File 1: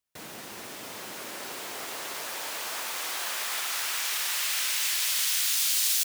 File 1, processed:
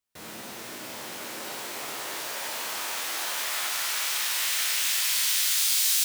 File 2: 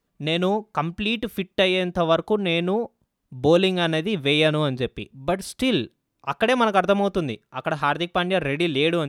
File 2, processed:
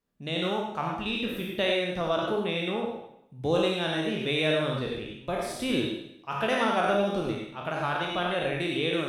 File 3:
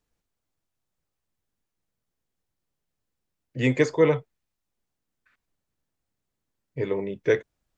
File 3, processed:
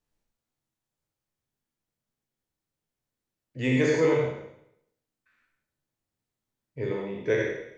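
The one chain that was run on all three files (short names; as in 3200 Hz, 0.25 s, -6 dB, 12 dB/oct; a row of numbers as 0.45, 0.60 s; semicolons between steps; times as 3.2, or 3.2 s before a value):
spectral trails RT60 0.76 s; non-linear reverb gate 0.12 s rising, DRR 2 dB; normalise peaks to -12 dBFS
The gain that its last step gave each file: -2.5, -10.5, -6.5 dB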